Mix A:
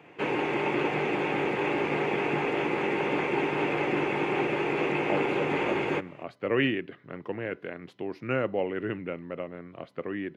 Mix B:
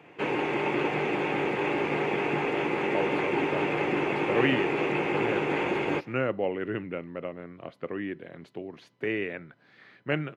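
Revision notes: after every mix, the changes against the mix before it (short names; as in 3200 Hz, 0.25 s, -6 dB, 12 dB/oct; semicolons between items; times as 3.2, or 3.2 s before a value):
speech: entry -2.15 s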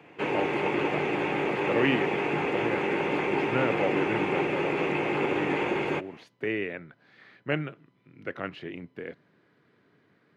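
speech: entry -2.60 s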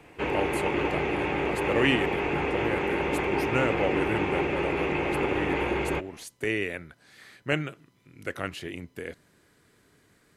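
speech: remove air absorption 300 m; master: remove HPF 120 Hz 24 dB/oct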